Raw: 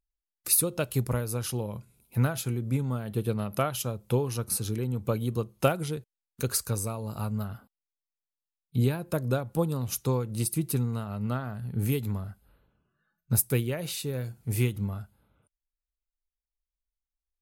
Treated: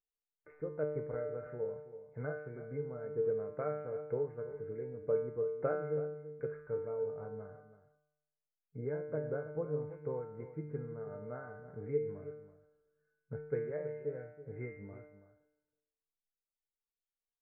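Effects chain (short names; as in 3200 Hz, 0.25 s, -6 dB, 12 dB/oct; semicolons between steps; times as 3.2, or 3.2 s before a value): rippled Chebyshev low-pass 2200 Hz, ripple 9 dB; bell 440 Hz +12 dB 0.26 oct; resonator 150 Hz, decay 0.85 s, harmonics all, mix 90%; echo 0.327 s -13.5 dB; gain +6.5 dB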